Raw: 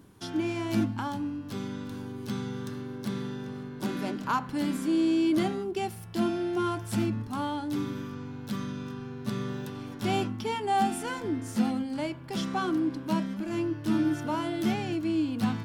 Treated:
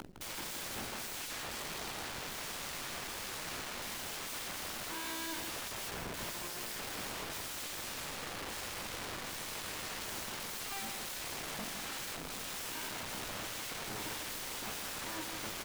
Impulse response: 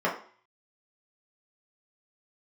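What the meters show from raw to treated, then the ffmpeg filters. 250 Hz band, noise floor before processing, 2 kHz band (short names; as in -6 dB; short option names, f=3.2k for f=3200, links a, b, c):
-22.0 dB, -41 dBFS, -1.5 dB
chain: -filter_complex "[0:a]bandreject=f=60:t=h:w=6,bandreject=f=120:t=h:w=6,bandreject=f=180:t=h:w=6,bandreject=f=240:t=h:w=6,bandreject=f=300:t=h:w=6,bandreject=f=360:t=h:w=6,acrossover=split=3200[a][b];[b]acompressor=threshold=-53dB:ratio=4:attack=1:release=60[c];[a][c]amix=inputs=2:normalize=0,lowpass=11k,anlmdn=0.01,equalizer=f=8.5k:w=0.38:g=-5,acompressor=mode=upward:threshold=-40dB:ratio=2.5,asoftclip=type=tanh:threshold=-30.5dB,flanger=delay=16.5:depth=4.5:speed=0.14,aeval=exprs='(mod(178*val(0)+1,2)-1)/178':c=same,acrusher=bits=9:dc=4:mix=0:aa=0.000001,asplit=2[d][e];[e]aecho=0:1:159:0.473[f];[d][f]amix=inputs=2:normalize=0,volume=5.5dB"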